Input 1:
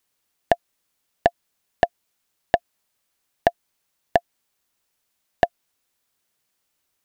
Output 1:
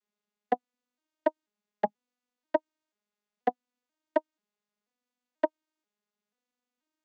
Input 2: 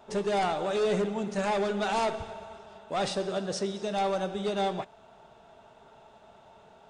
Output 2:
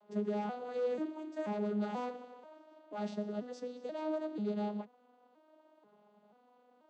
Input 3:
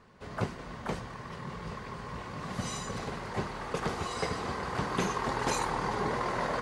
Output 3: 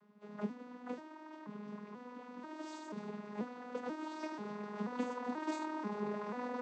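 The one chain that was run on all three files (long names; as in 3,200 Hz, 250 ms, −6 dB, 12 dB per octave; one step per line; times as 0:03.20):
vocoder with an arpeggio as carrier minor triad, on G#3, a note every 486 ms
level −7 dB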